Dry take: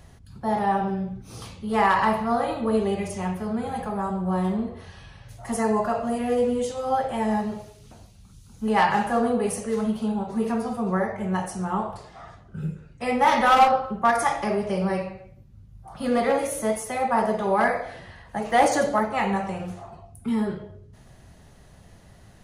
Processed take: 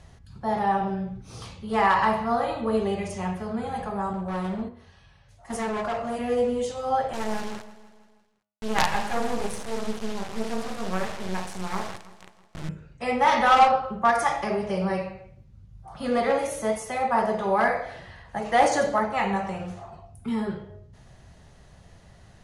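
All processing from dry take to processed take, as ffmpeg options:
ffmpeg -i in.wav -filter_complex "[0:a]asettb=1/sr,asplit=3[link_01][link_02][link_03];[link_01]atrim=end=4.134[link_04];[link_02]atrim=start=4.13:end=6.19,asetpts=PTS-STARTPTS,afade=type=in:duration=0.004:curve=qsin,afade=type=out:start_time=2.056:duration=0.004:curve=qsin,agate=range=-9dB:threshold=-32dB:ratio=16:release=100:detection=peak,bandreject=frequency=60:width_type=h:width=6,bandreject=frequency=120:width_type=h:width=6,bandreject=frequency=180:width_type=h:width=6,bandreject=frequency=240:width_type=h:width=6,bandreject=frequency=300:width_type=h:width=6,bandreject=frequency=360:width_type=h:width=6,bandreject=frequency=420:width_type=h:width=6,bandreject=frequency=480:width_type=h:width=6,volume=24dB,asoftclip=hard,volume=-24dB[link_05];[link_03]atrim=start=6.186[link_06];[link_04][link_05]acrossfade=duration=0.004:curve1=hsin:curve2=qsin[link_07];[link_07][link_06]acrossfade=duration=0.004:curve1=qsin:curve2=hsin,asettb=1/sr,asplit=3[link_08][link_09][link_10];[link_08]atrim=end=7.134[link_11];[link_09]atrim=start=7.13:end=12.69,asetpts=PTS-STARTPTS,afade=type=in:duration=0.004:curve=qsin,afade=type=out:start_time=5.556:duration=0.004:curve=qsin,acrusher=bits=3:dc=4:mix=0:aa=0.000001,aecho=1:1:162|324|486|648|810:0.141|0.0819|0.0475|0.0276|0.016,atrim=end_sample=245196[link_12];[link_10]atrim=start=12.686[link_13];[link_11][link_12]acrossfade=duration=0.004:curve1=hsin:curve2=qsin[link_14];[link_14][link_13]acrossfade=duration=0.004:curve1=qsin:curve2=hsin,lowpass=8300,equalizer=frequency=270:width=1.3:gain=-3.5,bandreject=frequency=104.5:width_type=h:width=4,bandreject=frequency=209:width_type=h:width=4,bandreject=frequency=313.5:width_type=h:width=4,bandreject=frequency=418:width_type=h:width=4,bandreject=frequency=522.5:width_type=h:width=4,bandreject=frequency=627:width_type=h:width=4,bandreject=frequency=731.5:width_type=h:width=4,bandreject=frequency=836:width_type=h:width=4,bandreject=frequency=940.5:width_type=h:width=4,bandreject=frequency=1045:width_type=h:width=4,bandreject=frequency=1149.5:width_type=h:width=4,bandreject=frequency=1254:width_type=h:width=4,bandreject=frequency=1358.5:width_type=h:width=4,bandreject=frequency=1463:width_type=h:width=4,bandreject=frequency=1567.5:width_type=h:width=4,bandreject=frequency=1672:width_type=h:width=4,bandreject=frequency=1776.5:width_type=h:width=4,bandreject=frequency=1881:width_type=h:width=4,bandreject=frequency=1985.5:width_type=h:width=4,bandreject=frequency=2090:width_type=h:width=4,bandreject=frequency=2194.5:width_type=h:width=4,bandreject=frequency=2299:width_type=h:width=4,bandreject=frequency=2403.5:width_type=h:width=4,bandreject=frequency=2508:width_type=h:width=4,bandreject=frequency=2612.5:width_type=h:width=4,bandreject=frequency=2717:width_type=h:width=4,bandreject=frequency=2821.5:width_type=h:width=4,bandreject=frequency=2926:width_type=h:width=4,bandreject=frequency=3030.5:width_type=h:width=4" out.wav

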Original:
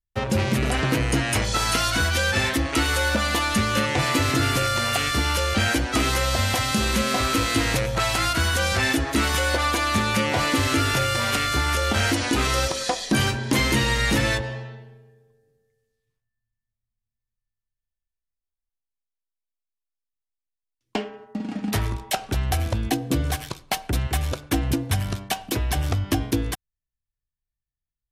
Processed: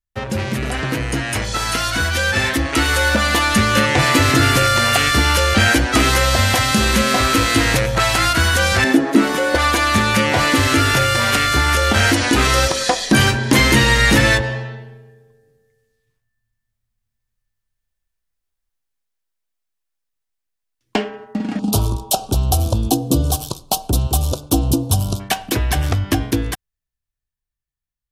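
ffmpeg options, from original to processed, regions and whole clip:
ffmpeg -i in.wav -filter_complex "[0:a]asettb=1/sr,asplit=3[link_01][link_02][link_03];[link_01]atrim=end=8.844[link_04];[link_02]atrim=start=8.84:end=9.55,asetpts=PTS-STARTPTS,afade=type=in:duration=0.004:curve=qsin,afade=type=out:start_time=0.706:duration=0.004:curve=qsin,highpass=frequency=200:width=0.5412,highpass=frequency=200:width=1.3066,tiltshelf=frequency=790:gain=8[link_05];[link_03]atrim=start=9.546[link_06];[link_04][link_05]acrossfade=duration=0.004:curve1=hsin:curve2=qsin[link_07];[link_07][link_06]acrossfade=duration=0.004:curve1=qsin:curve2=hsin,asettb=1/sr,asplit=3[link_08][link_09][link_10];[link_08]atrim=end=21.594[link_11];[link_09]atrim=start=21.59:end=25.2,asetpts=PTS-STARTPTS,afade=type=in:duration=0.004:curve=qsin,afade=type=out:start_time=3.606:duration=0.004:curve=qsin,asuperstop=centerf=1900:order=4:qfactor=0.78,highshelf=frequency=6900:gain=6[link_12];[link_10]atrim=start=25.196[link_13];[link_11][link_12]acrossfade=duration=0.004:curve1=hsin:curve2=qsin[link_14];[link_14][link_13]acrossfade=duration=0.004:curve1=qsin:curve2=hsin,equalizer=frequency=1700:width_type=o:width=0.45:gain=3,dynaudnorm=framelen=610:gausssize=9:maxgain=10dB" out.wav

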